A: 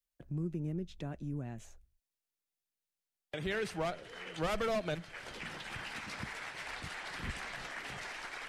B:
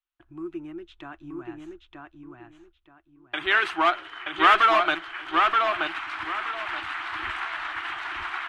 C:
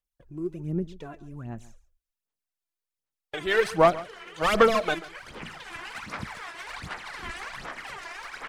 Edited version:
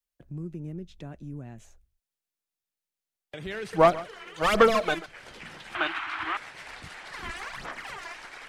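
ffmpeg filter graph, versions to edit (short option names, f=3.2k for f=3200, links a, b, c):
-filter_complex "[2:a]asplit=2[a][b];[0:a]asplit=4[c][d][e][f];[c]atrim=end=3.732[g];[a]atrim=start=3.728:end=5.062[h];[d]atrim=start=5.058:end=5.752[i];[1:a]atrim=start=5.748:end=6.372[j];[e]atrim=start=6.368:end=7.122[k];[b]atrim=start=7.118:end=8.142[l];[f]atrim=start=8.138[m];[g][h]acrossfade=d=0.004:c1=hsin:c2=hsin[n];[n][i]acrossfade=d=0.004:c1=hsin:c2=hsin[o];[o][j]acrossfade=d=0.004:c1=hsin:c2=hsin[p];[p][k]acrossfade=d=0.004:c1=hsin:c2=hsin[q];[q][l]acrossfade=d=0.004:c1=hsin:c2=hsin[r];[r][m]acrossfade=d=0.004:c1=hsin:c2=hsin"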